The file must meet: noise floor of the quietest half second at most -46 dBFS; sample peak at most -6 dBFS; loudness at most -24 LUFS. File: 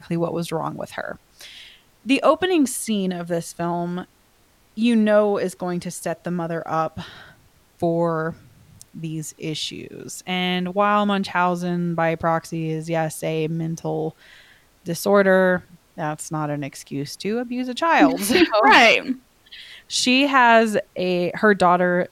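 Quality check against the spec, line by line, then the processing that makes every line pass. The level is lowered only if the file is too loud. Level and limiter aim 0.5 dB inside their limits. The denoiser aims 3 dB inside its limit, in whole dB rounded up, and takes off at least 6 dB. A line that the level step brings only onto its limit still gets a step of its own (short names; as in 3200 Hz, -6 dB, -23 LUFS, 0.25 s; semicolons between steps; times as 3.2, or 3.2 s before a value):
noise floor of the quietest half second -58 dBFS: OK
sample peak -3.5 dBFS: fail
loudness -20.5 LUFS: fail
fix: gain -4 dB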